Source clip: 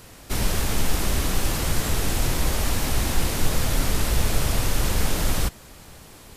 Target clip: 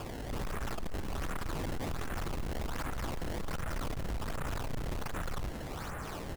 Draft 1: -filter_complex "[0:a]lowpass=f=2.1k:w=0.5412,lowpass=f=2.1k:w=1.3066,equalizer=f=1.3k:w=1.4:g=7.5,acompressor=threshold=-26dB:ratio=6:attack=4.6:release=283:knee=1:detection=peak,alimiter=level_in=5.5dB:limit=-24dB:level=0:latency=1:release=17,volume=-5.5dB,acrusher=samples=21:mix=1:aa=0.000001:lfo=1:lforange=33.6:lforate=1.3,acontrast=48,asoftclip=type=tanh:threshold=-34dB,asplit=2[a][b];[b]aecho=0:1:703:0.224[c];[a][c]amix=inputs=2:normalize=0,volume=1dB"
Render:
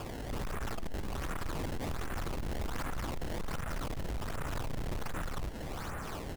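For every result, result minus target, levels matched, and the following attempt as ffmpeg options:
echo 0.314 s late; compressor: peak gain reduction +13.5 dB
-filter_complex "[0:a]lowpass=f=2.1k:w=0.5412,lowpass=f=2.1k:w=1.3066,equalizer=f=1.3k:w=1.4:g=7.5,acompressor=threshold=-26dB:ratio=6:attack=4.6:release=283:knee=1:detection=peak,alimiter=level_in=5.5dB:limit=-24dB:level=0:latency=1:release=17,volume=-5.5dB,acrusher=samples=21:mix=1:aa=0.000001:lfo=1:lforange=33.6:lforate=1.3,acontrast=48,asoftclip=type=tanh:threshold=-34dB,asplit=2[a][b];[b]aecho=0:1:389:0.224[c];[a][c]amix=inputs=2:normalize=0,volume=1dB"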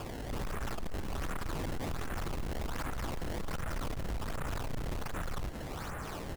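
compressor: peak gain reduction +13.5 dB
-filter_complex "[0:a]lowpass=f=2.1k:w=0.5412,lowpass=f=2.1k:w=1.3066,equalizer=f=1.3k:w=1.4:g=7.5,alimiter=level_in=5.5dB:limit=-24dB:level=0:latency=1:release=17,volume=-5.5dB,acrusher=samples=21:mix=1:aa=0.000001:lfo=1:lforange=33.6:lforate=1.3,acontrast=48,asoftclip=type=tanh:threshold=-34dB,asplit=2[a][b];[b]aecho=0:1:389:0.224[c];[a][c]amix=inputs=2:normalize=0,volume=1dB"

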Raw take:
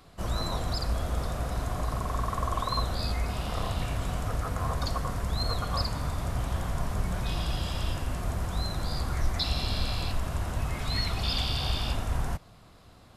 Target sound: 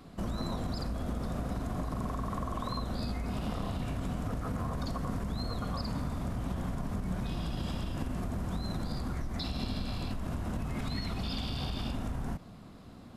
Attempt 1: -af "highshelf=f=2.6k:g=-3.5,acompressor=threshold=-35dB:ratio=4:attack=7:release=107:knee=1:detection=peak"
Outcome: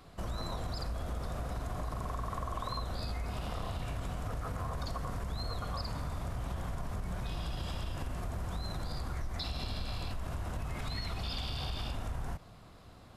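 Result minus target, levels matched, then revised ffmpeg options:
250 Hz band -6.5 dB
-af "highshelf=f=2.6k:g=-3.5,acompressor=threshold=-35dB:ratio=4:attack=7:release=107:knee=1:detection=peak,equalizer=f=230:w=1.2:g=11.5"

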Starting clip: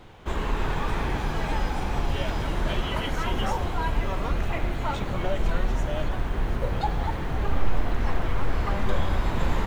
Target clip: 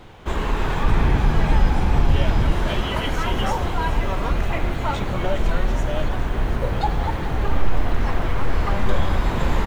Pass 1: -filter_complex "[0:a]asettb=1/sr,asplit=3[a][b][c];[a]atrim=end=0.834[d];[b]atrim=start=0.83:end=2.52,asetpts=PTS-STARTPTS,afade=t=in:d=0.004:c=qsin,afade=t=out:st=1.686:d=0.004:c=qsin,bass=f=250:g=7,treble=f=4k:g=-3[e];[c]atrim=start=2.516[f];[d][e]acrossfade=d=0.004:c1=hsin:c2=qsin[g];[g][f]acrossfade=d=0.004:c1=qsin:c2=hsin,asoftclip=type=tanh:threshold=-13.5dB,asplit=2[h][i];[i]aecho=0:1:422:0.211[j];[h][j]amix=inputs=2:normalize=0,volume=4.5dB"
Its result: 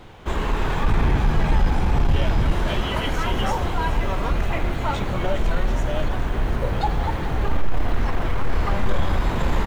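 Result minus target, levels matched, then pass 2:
soft clip: distortion +14 dB
-filter_complex "[0:a]asettb=1/sr,asplit=3[a][b][c];[a]atrim=end=0.834[d];[b]atrim=start=0.83:end=2.52,asetpts=PTS-STARTPTS,afade=t=in:d=0.004:c=qsin,afade=t=out:st=1.686:d=0.004:c=qsin,bass=f=250:g=7,treble=f=4k:g=-3[e];[c]atrim=start=2.516[f];[d][e]acrossfade=d=0.004:c1=hsin:c2=qsin[g];[g][f]acrossfade=d=0.004:c1=qsin:c2=hsin,asoftclip=type=tanh:threshold=-5dB,asplit=2[h][i];[i]aecho=0:1:422:0.211[j];[h][j]amix=inputs=2:normalize=0,volume=4.5dB"

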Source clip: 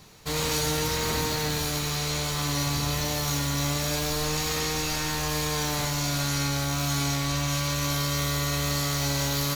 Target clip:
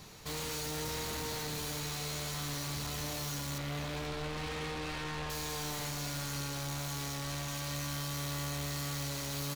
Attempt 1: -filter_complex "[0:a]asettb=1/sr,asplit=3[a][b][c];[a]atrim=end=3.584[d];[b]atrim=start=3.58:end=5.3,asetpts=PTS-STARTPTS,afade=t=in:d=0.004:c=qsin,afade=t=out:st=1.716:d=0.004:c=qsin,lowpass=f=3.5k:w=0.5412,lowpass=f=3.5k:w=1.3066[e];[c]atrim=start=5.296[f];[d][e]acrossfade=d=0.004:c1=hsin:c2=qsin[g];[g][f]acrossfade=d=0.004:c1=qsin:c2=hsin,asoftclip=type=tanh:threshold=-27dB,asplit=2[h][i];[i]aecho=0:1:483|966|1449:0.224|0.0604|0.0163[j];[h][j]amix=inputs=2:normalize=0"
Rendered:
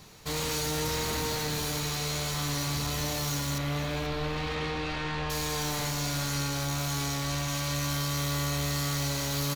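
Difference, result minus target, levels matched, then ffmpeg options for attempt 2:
soft clip: distortion -6 dB
-filter_complex "[0:a]asettb=1/sr,asplit=3[a][b][c];[a]atrim=end=3.584[d];[b]atrim=start=3.58:end=5.3,asetpts=PTS-STARTPTS,afade=t=in:d=0.004:c=qsin,afade=t=out:st=1.716:d=0.004:c=qsin,lowpass=f=3.5k:w=0.5412,lowpass=f=3.5k:w=1.3066[e];[c]atrim=start=5.296[f];[d][e]acrossfade=d=0.004:c1=hsin:c2=qsin[g];[g][f]acrossfade=d=0.004:c1=qsin:c2=hsin,asoftclip=type=tanh:threshold=-37dB,asplit=2[h][i];[i]aecho=0:1:483|966|1449:0.224|0.0604|0.0163[j];[h][j]amix=inputs=2:normalize=0"

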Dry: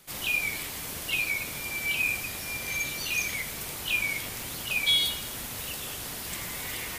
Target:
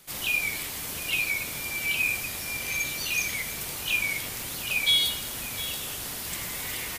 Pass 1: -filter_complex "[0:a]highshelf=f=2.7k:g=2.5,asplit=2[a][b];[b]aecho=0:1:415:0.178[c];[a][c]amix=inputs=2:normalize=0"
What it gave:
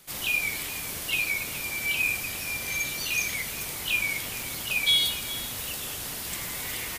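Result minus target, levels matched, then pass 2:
echo 0.293 s early
-filter_complex "[0:a]highshelf=f=2.7k:g=2.5,asplit=2[a][b];[b]aecho=0:1:708:0.178[c];[a][c]amix=inputs=2:normalize=0"

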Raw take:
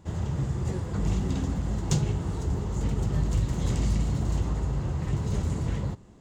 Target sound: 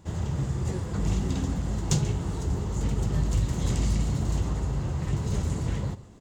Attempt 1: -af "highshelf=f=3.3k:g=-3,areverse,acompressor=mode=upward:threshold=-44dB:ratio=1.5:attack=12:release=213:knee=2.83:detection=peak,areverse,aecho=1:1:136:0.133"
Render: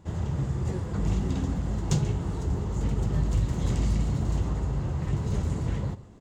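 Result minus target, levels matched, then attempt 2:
8000 Hz band -5.5 dB
-af "highshelf=f=3.3k:g=4,areverse,acompressor=mode=upward:threshold=-44dB:ratio=1.5:attack=12:release=213:knee=2.83:detection=peak,areverse,aecho=1:1:136:0.133"

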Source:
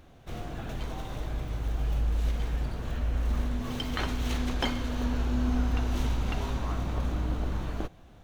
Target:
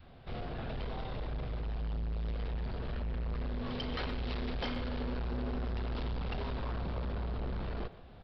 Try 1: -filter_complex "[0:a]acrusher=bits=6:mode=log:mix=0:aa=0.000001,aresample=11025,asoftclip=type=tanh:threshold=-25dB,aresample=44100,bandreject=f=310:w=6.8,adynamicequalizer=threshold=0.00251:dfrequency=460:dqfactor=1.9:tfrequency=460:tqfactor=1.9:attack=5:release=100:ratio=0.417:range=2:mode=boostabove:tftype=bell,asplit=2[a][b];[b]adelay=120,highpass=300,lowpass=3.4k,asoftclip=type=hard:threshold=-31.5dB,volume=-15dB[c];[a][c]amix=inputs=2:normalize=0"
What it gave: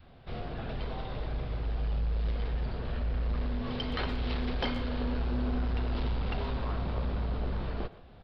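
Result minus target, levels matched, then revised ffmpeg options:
soft clip: distortion -7 dB
-filter_complex "[0:a]acrusher=bits=6:mode=log:mix=0:aa=0.000001,aresample=11025,asoftclip=type=tanh:threshold=-33dB,aresample=44100,bandreject=f=310:w=6.8,adynamicequalizer=threshold=0.00251:dfrequency=460:dqfactor=1.9:tfrequency=460:tqfactor=1.9:attack=5:release=100:ratio=0.417:range=2:mode=boostabove:tftype=bell,asplit=2[a][b];[b]adelay=120,highpass=300,lowpass=3.4k,asoftclip=type=hard:threshold=-31.5dB,volume=-15dB[c];[a][c]amix=inputs=2:normalize=0"

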